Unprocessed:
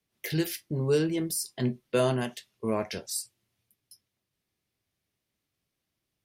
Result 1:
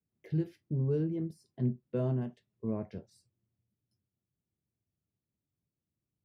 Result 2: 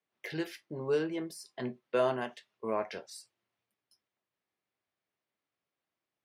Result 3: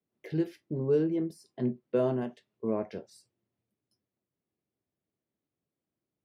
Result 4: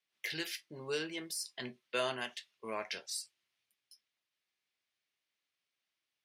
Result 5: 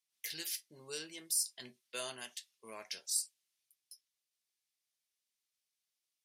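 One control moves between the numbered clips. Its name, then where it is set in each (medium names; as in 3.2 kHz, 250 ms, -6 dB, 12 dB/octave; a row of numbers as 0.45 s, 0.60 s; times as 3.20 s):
band-pass filter, frequency: 120 Hz, 980 Hz, 330 Hz, 2.6 kHz, 7.5 kHz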